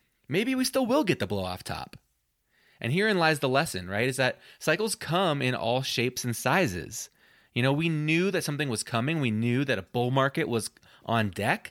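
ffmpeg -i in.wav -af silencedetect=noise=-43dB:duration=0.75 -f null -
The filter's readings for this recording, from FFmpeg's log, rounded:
silence_start: 1.96
silence_end: 2.81 | silence_duration: 0.85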